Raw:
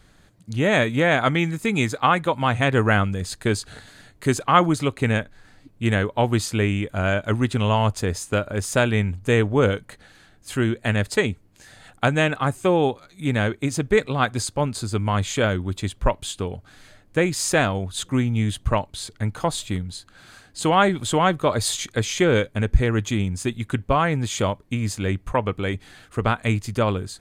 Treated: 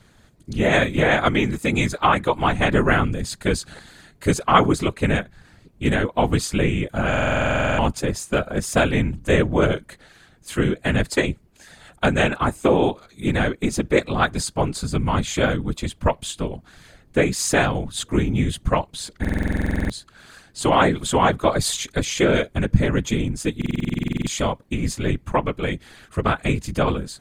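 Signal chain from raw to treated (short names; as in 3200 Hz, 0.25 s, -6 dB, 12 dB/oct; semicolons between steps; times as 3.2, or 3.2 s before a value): whisperiser; stuck buffer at 7.09/19.2/23.57, samples 2048, times 14; gain +1 dB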